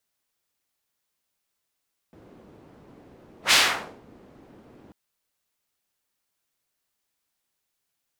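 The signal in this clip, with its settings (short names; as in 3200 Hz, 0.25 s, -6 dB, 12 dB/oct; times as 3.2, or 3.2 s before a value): whoosh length 2.79 s, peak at 1.39, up 0.11 s, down 0.54 s, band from 300 Hz, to 3400 Hz, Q 0.95, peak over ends 34.5 dB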